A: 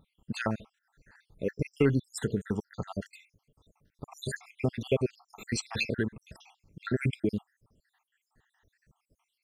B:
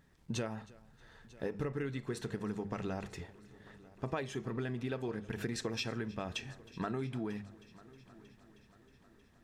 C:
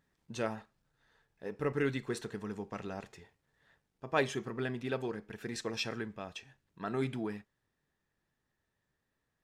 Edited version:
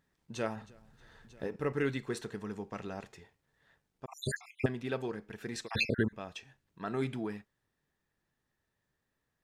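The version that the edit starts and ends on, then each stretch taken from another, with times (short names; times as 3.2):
C
0.56–1.56 from B
4.06–4.66 from A
5.66–6.13 from A, crossfade 0.06 s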